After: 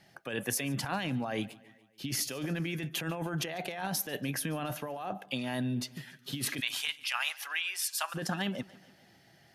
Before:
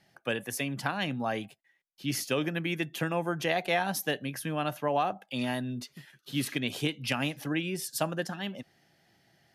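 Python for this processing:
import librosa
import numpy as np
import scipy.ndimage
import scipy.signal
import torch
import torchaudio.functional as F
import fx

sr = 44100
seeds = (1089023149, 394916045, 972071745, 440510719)

p1 = fx.highpass(x, sr, hz=1000.0, slope=24, at=(6.59, 8.14), fade=0.02)
p2 = fx.over_compress(p1, sr, threshold_db=-35.0, ratio=-1.0)
p3 = p2 + fx.echo_feedback(p2, sr, ms=144, feedback_pct=56, wet_db=-21.5, dry=0)
y = p3 * librosa.db_to_amplitude(1.0)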